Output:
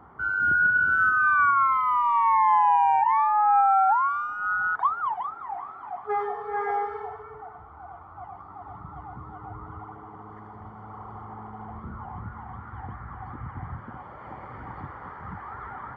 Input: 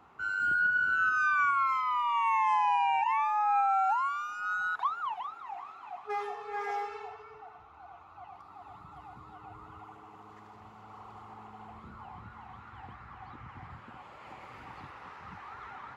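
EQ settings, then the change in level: Savitzky-Golay filter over 41 samples; bass shelf 190 Hz +7.5 dB; +7.0 dB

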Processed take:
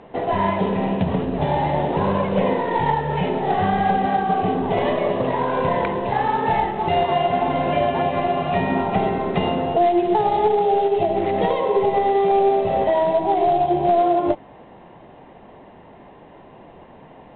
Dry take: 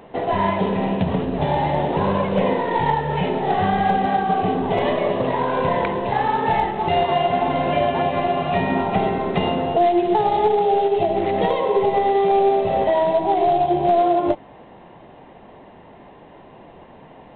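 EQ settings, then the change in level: distance through air 99 m; 0.0 dB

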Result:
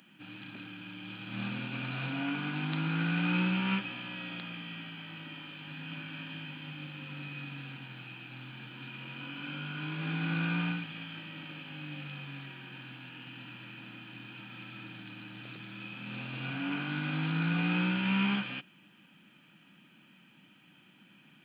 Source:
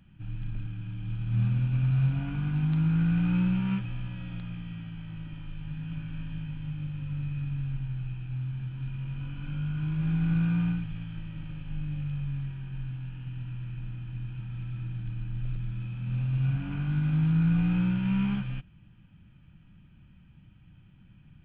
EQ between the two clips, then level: high-pass 240 Hz 24 dB/octave; treble shelf 2.3 kHz +9.5 dB; +5.0 dB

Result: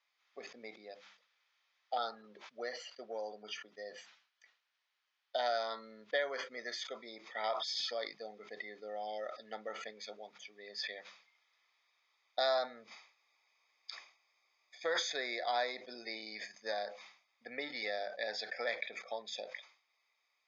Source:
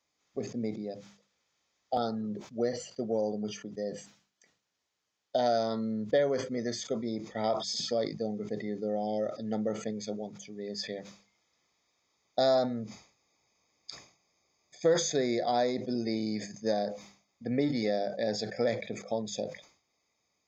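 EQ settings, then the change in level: high-pass 1.3 kHz 12 dB/octave; low-pass 4.4 kHz 12 dB/octave; distance through air 120 m; +5.5 dB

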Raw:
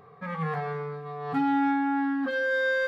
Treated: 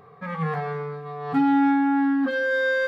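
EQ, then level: dynamic bell 250 Hz, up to +4 dB, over -36 dBFS, Q 1.1; +2.5 dB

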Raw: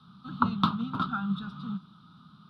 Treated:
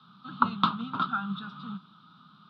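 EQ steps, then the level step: band-pass 110–3100 Hz; tilt EQ +2.5 dB/octave; +2.0 dB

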